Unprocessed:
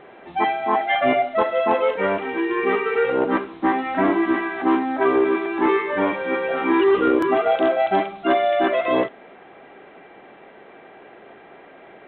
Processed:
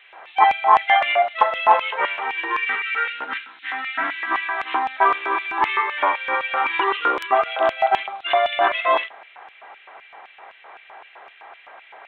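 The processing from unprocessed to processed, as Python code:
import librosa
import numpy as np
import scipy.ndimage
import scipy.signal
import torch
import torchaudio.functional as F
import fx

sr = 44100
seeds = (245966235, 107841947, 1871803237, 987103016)

y = fx.spec_box(x, sr, start_s=2.65, length_s=1.66, low_hz=320.0, high_hz=1300.0, gain_db=-13)
y = fx.high_shelf(y, sr, hz=3400.0, db=-6.0, at=(7.26, 8.25))
y = fx.filter_lfo_highpass(y, sr, shape='square', hz=3.9, low_hz=920.0, high_hz=2600.0, q=2.2)
y = y * 10.0 ** (2.5 / 20.0)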